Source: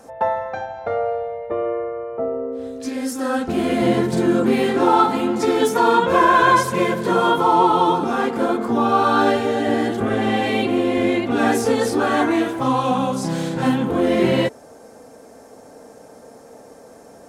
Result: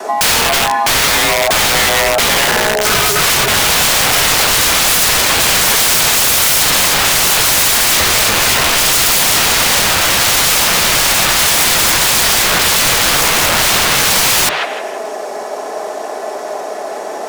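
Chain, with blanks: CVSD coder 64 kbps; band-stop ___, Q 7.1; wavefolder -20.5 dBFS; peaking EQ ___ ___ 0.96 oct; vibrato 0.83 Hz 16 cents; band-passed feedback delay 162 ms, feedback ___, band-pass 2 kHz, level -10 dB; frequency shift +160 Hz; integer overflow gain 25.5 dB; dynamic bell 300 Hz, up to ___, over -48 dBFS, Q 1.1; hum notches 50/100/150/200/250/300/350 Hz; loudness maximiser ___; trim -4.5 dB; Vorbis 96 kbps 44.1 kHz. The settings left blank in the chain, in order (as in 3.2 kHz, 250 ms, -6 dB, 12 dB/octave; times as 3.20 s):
760 Hz, 10 kHz, -8 dB, 40%, -4 dB, +26.5 dB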